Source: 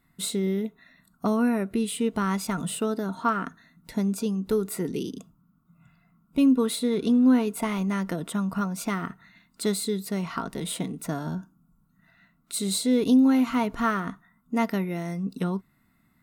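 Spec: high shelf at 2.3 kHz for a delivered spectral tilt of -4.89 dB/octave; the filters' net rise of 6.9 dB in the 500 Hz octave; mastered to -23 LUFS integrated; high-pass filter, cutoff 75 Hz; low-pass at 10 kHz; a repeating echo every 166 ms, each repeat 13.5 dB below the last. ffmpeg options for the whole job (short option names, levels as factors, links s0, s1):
-af "highpass=75,lowpass=10000,equalizer=f=500:t=o:g=8,highshelf=f=2300:g=5,aecho=1:1:166|332:0.211|0.0444,volume=1.06"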